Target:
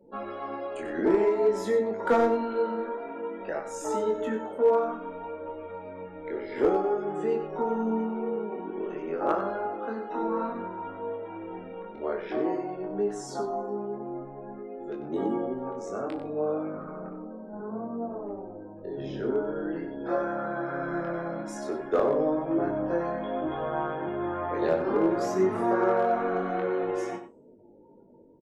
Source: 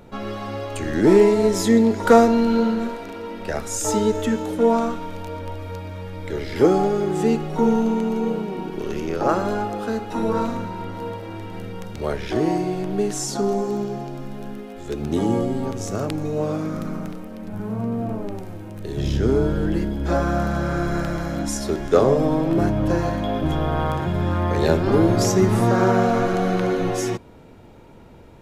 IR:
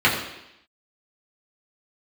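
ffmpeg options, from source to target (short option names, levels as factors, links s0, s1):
-filter_complex "[0:a]afftdn=nr=34:nf=-41,acrossover=split=240 2200:gain=0.0708 1 0.224[s0][s1][s2];[s0][s1][s2]amix=inputs=3:normalize=0,bandreject=f=400.2:t=h:w=4,bandreject=f=800.4:t=h:w=4,bandreject=f=1200.6:t=h:w=4,bandreject=f=1600.8:t=h:w=4,bandreject=f=2001:t=h:w=4,bandreject=f=2401.2:t=h:w=4,bandreject=f=2801.4:t=h:w=4,bandreject=f=3201.6:t=h:w=4,bandreject=f=3601.8:t=h:w=4,bandreject=f=4002:t=h:w=4,bandreject=f=4402.2:t=h:w=4,bandreject=f=4802.4:t=h:w=4,bandreject=f=5202.6:t=h:w=4,bandreject=f=5602.8:t=h:w=4,bandreject=f=6003:t=h:w=4,bandreject=f=6403.2:t=h:w=4,bandreject=f=6803.4:t=h:w=4,bandreject=f=7203.6:t=h:w=4,bandreject=f=7603.8:t=h:w=4,bandreject=f=8004:t=h:w=4,bandreject=f=8404.2:t=h:w=4,bandreject=f=8804.4:t=h:w=4,bandreject=f=9204.6:t=h:w=4,bandreject=f=9604.8:t=h:w=4,bandreject=f=10005:t=h:w=4,bandreject=f=10405.2:t=h:w=4,bandreject=f=10805.4:t=h:w=4,bandreject=f=11205.6:t=h:w=4,bandreject=f=11605.8:t=h:w=4,bandreject=f=12006:t=h:w=4,bandreject=f=12406.2:t=h:w=4,bandreject=f=12806.4:t=h:w=4,bandreject=f=13206.6:t=h:w=4,bandreject=f=13606.8:t=h:w=4,bandreject=f=14007:t=h:w=4,bandreject=f=14407.2:t=h:w=4,asplit=2[s3][s4];[s4]acompressor=threshold=0.0224:ratio=10,volume=0.841[s5];[s3][s5]amix=inputs=2:normalize=0,flanger=delay=19.5:depth=4.4:speed=0.54,aeval=exprs='clip(val(0),-1,0.224)':c=same,asplit=2[s6][s7];[s7]adelay=37,volume=0.224[s8];[s6][s8]amix=inputs=2:normalize=0,aecho=1:1:94:0.282,volume=0.631"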